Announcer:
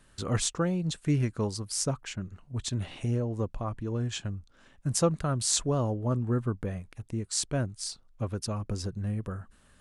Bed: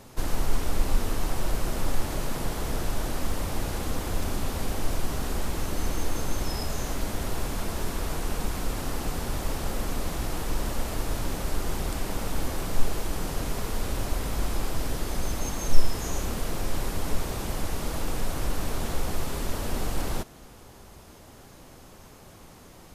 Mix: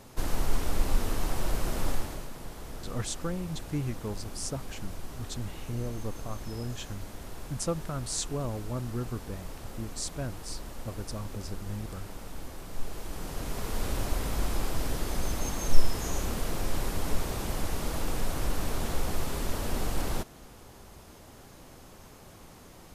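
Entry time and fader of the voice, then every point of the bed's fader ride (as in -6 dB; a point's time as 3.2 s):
2.65 s, -6.0 dB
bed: 1.9 s -2 dB
2.31 s -12 dB
12.65 s -12 dB
13.84 s -1.5 dB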